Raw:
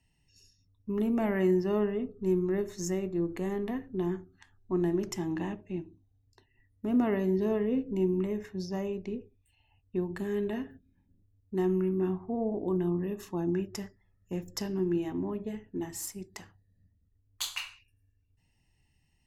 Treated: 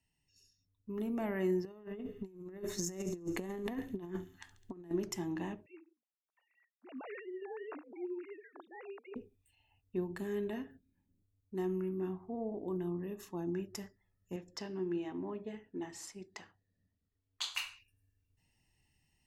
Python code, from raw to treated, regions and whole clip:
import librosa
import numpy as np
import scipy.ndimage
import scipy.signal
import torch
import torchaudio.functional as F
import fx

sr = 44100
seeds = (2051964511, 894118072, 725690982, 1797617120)

y = fx.chain(x, sr, fx.echo_wet_highpass(ms=69, feedback_pct=70, hz=3600.0, wet_db=-11.5),
    fx.over_compress(threshold_db=-36.0, ratio=-0.5), at=(1.65, 4.91))
y = fx.chain(y, sr, fx.sine_speech(),
    fx.highpass(hz=760.0, slope=12), at=(5.66, 9.16))
y = fx.chain(y, sr, fx.lowpass(hz=4600.0, slope=12),
    fx.low_shelf(hz=170.0, db=-11.0), at=(14.36, 17.55))
y = fx.high_shelf(y, sr, hz=6800.0, db=4.0)
y = fx.rider(y, sr, range_db=3, speed_s=2.0)
y = fx.low_shelf(y, sr, hz=130.0, db=-5.5)
y = y * librosa.db_to_amplitude(-5.0)